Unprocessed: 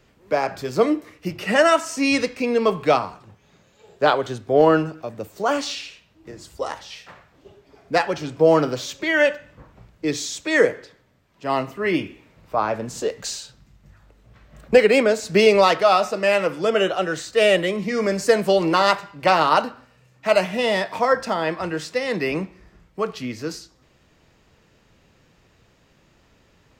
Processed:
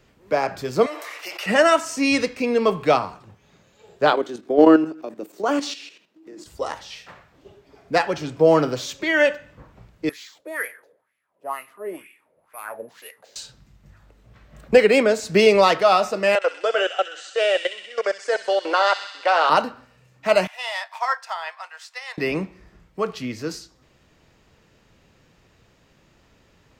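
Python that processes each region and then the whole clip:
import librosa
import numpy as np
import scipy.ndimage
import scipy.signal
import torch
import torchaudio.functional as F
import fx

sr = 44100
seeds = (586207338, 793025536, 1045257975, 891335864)

y = fx.chain(x, sr, fx.highpass(hz=640.0, slope=24),
    fx.env_flatten(amount_pct=70), at=(0.86, 1.46))
y = fx.chain(y, sr, fx.highpass(hz=200.0, slope=24),
    fx.peak_eq(hz=320.0, db=10.0, octaves=0.57),
    fx.level_steps(step_db=10), at=(4.12, 6.46))
y = fx.chain(y, sr, fx.resample_bad(factor=4, down='none', up='zero_stuff'),
    fx.wah_lfo(hz=2.1, low_hz=510.0, high_hz=2400.0, q=3.7), at=(10.09, 13.36))
y = fx.chain(y, sr, fx.level_steps(step_db=21),
    fx.cabinet(low_hz=420.0, low_slope=24, high_hz=8500.0, hz=(520.0, 750.0, 1500.0, 3200.0), db=(5, 5, 8, 4)),
    fx.echo_wet_highpass(ms=64, feedback_pct=74, hz=2800.0, wet_db=-6), at=(16.35, 19.5))
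y = fx.chain(y, sr, fx.steep_highpass(hz=750.0, slope=36),
    fx.upward_expand(threshold_db=-43.0, expansion=1.5), at=(20.47, 22.18))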